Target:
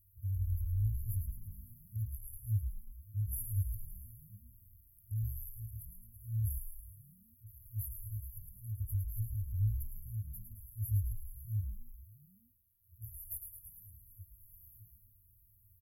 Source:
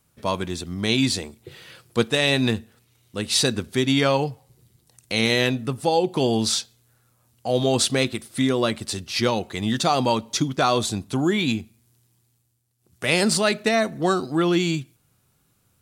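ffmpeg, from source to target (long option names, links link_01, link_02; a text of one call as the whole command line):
ffmpeg -i in.wav -filter_complex "[0:a]afftfilt=real='re*(1-between(b*sr/4096,110,11000))':imag='im*(1-between(b*sr/4096,110,11000))':win_size=4096:overlap=0.75,asplit=9[link_01][link_02][link_03][link_04][link_05][link_06][link_07][link_08][link_09];[link_02]adelay=108,afreqshift=-42,volume=-6.5dB[link_10];[link_03]adelay=216,afreqshift=-84,volume=-11.1dB[link_11];[link_04]adelay=324,afreqshift=-126,volume=-15.7dB[link_12];[link_05]adelay=432,afreqshift=-168,volume=-20.2dB[link_13];[link_06]adelay=540,afreqshift=-210,volume=-24.8dB[link_14];[link_07]adelay=648,afreqshift=-252,volume=-29.4dB[link_15];[link_08]adelay=756,afreqshift=-294,volume=-34dB[link_16];[link_09]adelay=864,afreqshift=-336,volume=-38.6dB[link_17];[link_01][link_10][link_11][link_12][link_13][link_14][link_15][link_16][link_17]amix=inputs=9:normalize=0,volume=3dB" out.wav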